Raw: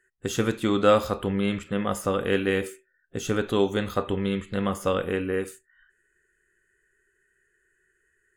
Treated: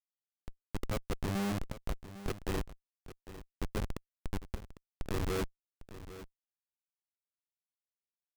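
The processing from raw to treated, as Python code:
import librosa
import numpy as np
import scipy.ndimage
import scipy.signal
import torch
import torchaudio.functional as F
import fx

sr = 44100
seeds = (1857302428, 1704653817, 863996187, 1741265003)

y = fx.auto_swell(x, sr, attack_ms=543.0)
y = fx.schmitt(y, sr, flips_db=-28.0)
y = y + 10.0 ** (-14.5 / 20.0) * np.pad(y, (int(802 * sr / 1000.0), 0))[:len(y)]
y = y * librosa.db_to_amplitude(4.0)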